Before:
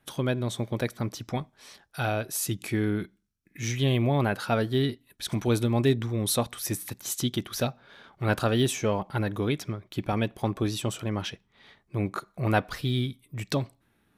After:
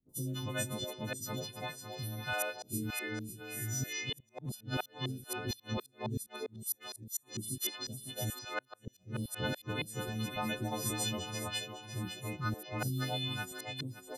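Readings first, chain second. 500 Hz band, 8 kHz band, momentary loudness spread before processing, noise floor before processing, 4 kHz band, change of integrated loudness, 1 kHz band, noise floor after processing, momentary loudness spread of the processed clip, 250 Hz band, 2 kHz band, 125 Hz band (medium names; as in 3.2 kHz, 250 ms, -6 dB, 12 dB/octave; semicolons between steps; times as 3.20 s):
-12.5 dB, -4.0 dB, 10 LU, -70 dBFS, -4.0 dB, -9.5 dB, -9.0 dB, -68 dBFS, 7 LU, -12.0 dB, -5.0 dB, -10.5 dB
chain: partials quantised in pitch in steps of 3 st; on a send: echo whose repeats swap between lows and highs 277 ms, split 840 Hz, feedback 64%, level -4.5 dB; on the sum: inverted gate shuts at -13 dBFS, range -42 dB; three bands offset in time lows, highs, mids 90/290 ms, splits 350/5200 Hz; trim -8 dB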